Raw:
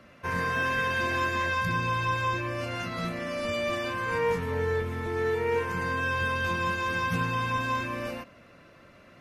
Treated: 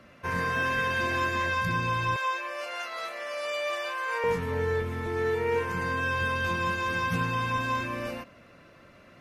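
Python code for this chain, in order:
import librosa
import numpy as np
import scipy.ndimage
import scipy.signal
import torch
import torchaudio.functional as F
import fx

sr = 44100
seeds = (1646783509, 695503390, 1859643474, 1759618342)

y = fx.highpass(x, sr, hz=520.0, slope=24, at=(2.16, 4.24))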